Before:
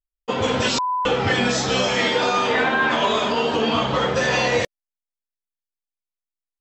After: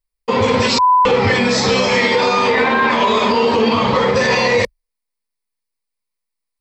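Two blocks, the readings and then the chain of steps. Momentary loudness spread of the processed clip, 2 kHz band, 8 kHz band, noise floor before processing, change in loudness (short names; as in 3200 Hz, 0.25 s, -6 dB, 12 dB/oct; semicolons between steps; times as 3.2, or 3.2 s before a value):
3 LU, +4.5 dB, +2.0 dB, under -85 dBFS, +5.5 dB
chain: ripple EQ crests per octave 0.91, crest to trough 8 dB; maximiser +12.5 dB; gain -5 dB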